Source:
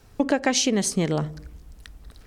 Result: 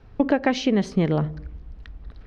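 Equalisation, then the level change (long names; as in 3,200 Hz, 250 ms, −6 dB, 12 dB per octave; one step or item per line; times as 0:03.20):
high-frequency loss of the air 290 metres
low-shelf EQ 130 Hz +4 dB
+2.0 dB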